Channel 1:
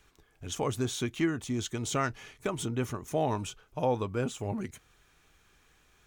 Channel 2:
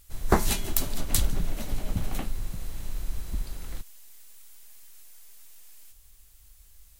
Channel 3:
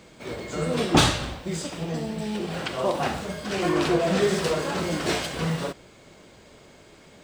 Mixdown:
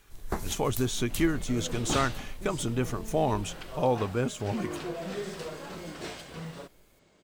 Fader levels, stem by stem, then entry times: +2.5 dB, -11.0 dB, -13.5 dB; 0.00 s, 0.00 s, 0.95 s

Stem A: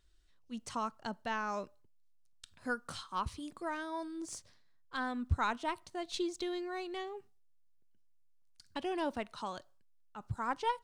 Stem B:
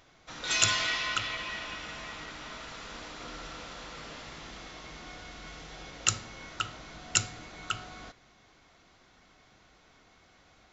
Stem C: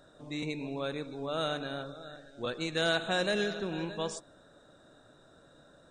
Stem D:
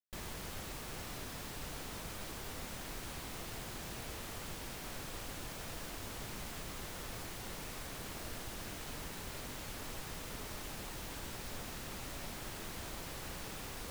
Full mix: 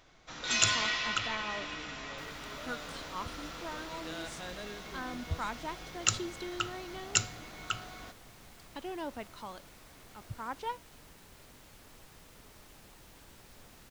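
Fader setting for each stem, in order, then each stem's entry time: -4.0 dB, -1.5 dB, -15.0 dB, -11.0 dB; 0.00 s, 0.00 s, 1.30 s, 2.05 s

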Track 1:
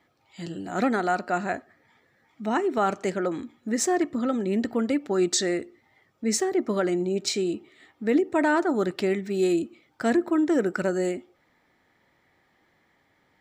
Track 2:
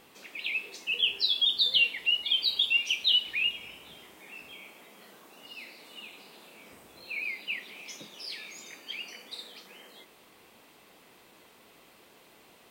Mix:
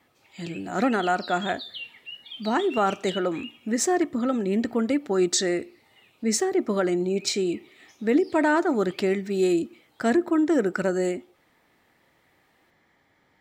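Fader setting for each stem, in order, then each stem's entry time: +1.0 dB, -14.0 dB; 0.00 s, 0.00 s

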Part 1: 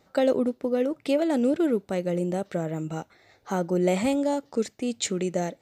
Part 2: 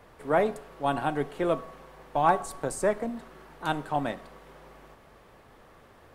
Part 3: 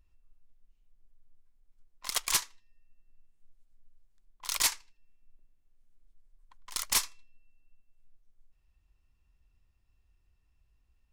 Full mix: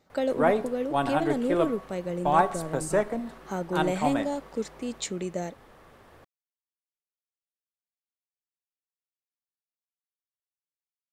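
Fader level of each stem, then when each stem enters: -5.0 dB, +1.0 dB, mute; 0.00 s, 0.10 s, mute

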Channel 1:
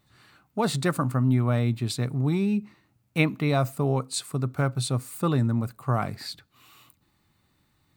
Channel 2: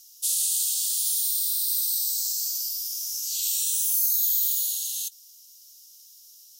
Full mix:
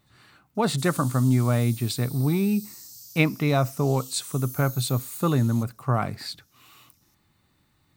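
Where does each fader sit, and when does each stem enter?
+1.5 dB, -17.0 dB; 0.00 s, 0.55 s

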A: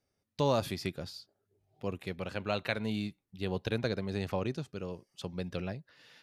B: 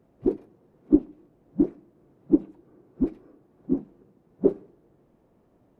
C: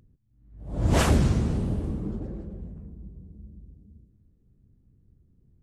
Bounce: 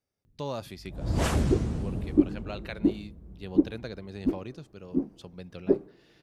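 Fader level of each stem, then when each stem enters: -6.0 dB, -2.5 dB, -5.0 dB; 0.00 s, 1.25 s, 0.25 s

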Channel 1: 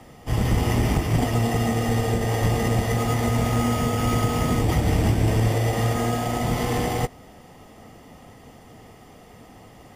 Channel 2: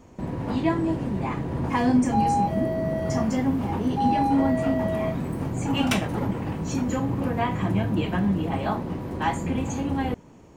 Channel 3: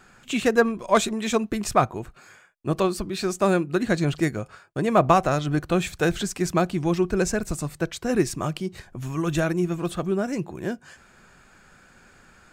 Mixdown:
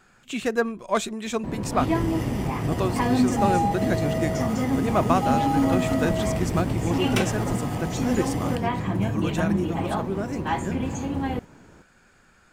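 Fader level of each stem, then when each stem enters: -9.0 dB, -1.0 dB, -4.5 dB; 1.50 s, 1.25 s, 0.00 s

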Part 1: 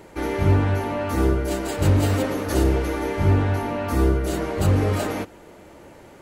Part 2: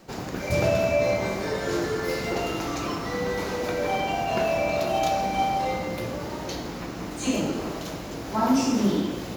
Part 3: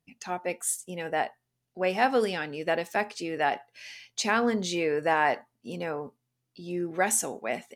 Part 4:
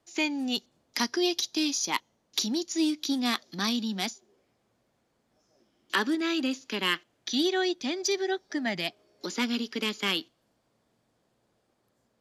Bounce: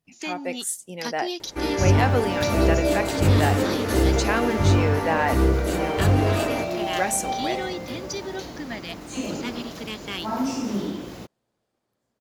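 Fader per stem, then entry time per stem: -0.5 dB, -4.5 dB, +0.5 dB, -4.5 dB; 1.40 s, 1.90 s, 0.00 s, 0.05 s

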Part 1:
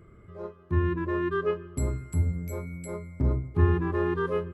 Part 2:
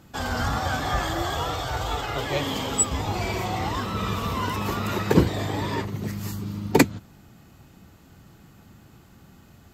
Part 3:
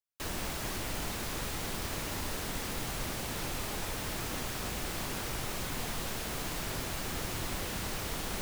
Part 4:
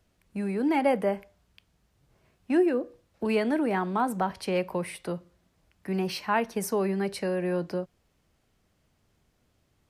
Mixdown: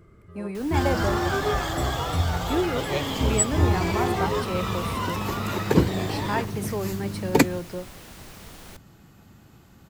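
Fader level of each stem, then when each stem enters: 0.0 dB, -1.0 dB, -8.0 dB, -3.0 dB; 0.00 s, 0.60 s, 0.35 s, 0.00 s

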